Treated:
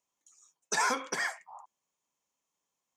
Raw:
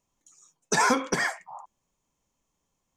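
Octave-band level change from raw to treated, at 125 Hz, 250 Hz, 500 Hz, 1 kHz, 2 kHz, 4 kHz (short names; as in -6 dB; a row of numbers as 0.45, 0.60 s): -17.0, -13.5, -9.5, -6.0, -5.0, -4.5 dB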